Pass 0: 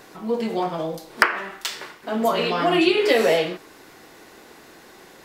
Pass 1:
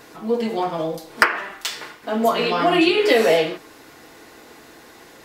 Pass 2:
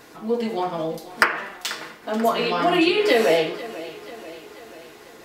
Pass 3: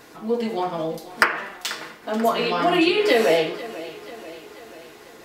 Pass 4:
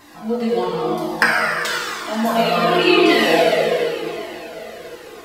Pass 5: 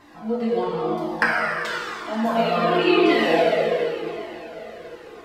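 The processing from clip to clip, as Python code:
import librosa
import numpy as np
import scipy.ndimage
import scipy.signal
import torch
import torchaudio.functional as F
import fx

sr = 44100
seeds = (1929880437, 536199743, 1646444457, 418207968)

y1 = fx.notch_comb(x, sr, f0_hz=190.0)
y1 = y1 * 10.0 ** (3.0 / 20.0)
y2 = fx.echo_feedback(y1, sr, ms=488, feedback_pct=57, wet_db=-17.0)
y2 = y2 * 10.0 ** (-2.0 / 20.0)
y3 = y2
y4 = fx.rev_plate(y3, sr, seeds[0], rt60_s=2.9, hf_ratio=0.85, predelay_ms=0, drr_db=-4.0)
y4 = fx.comb_cascade(y4, sr, direction='falling', hz=0.94)
y4 = y4 * 10.0 ** (4.5 / 20.0)
y5 = fx.lowpass(y4, sr, hz=2300.0, slope=6)
y5 = y5 * 10.0 ** (-3.0 / 20.0)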